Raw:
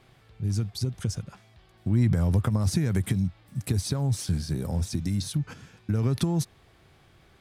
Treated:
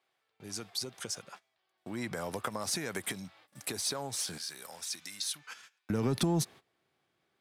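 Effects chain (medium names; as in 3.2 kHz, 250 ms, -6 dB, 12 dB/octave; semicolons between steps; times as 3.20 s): gate -46 dBFS, range -19 dB; high-pass 550 Hz 12 dB/octave, from 4.38 s 1.3 kHz, from 5.90 s 220 Hz; saturation -21 dBFS, distortion -21 dB; trim +2 dB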